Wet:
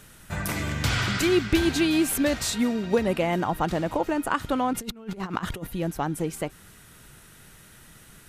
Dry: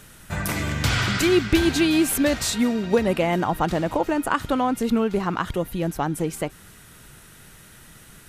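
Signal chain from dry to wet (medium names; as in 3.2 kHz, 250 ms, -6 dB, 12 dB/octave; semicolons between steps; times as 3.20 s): 4.73–5.67 s: compressor with a negative ratio -29 dBFS, ratio -0.5; trim -3 dB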